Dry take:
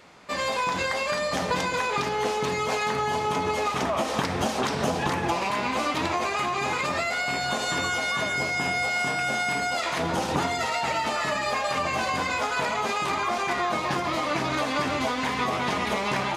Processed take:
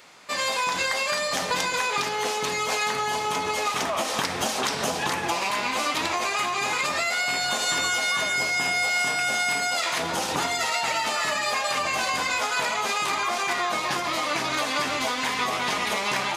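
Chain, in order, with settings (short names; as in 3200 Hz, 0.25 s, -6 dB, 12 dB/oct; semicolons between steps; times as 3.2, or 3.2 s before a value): tilt +2.5 dB/oct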